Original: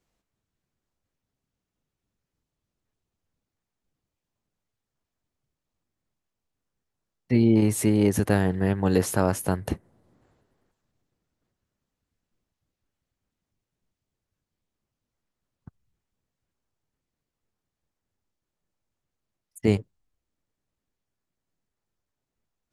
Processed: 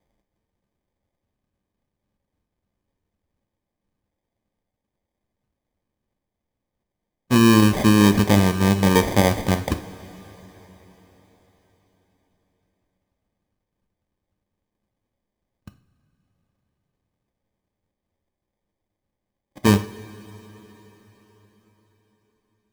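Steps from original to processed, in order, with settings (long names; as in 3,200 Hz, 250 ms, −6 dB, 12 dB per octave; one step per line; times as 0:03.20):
decimation without filtering 32×
coupled-rooms reverb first 0.4 s, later 4.7 s, from −18 dB, DRR 8 dB
level +4 dB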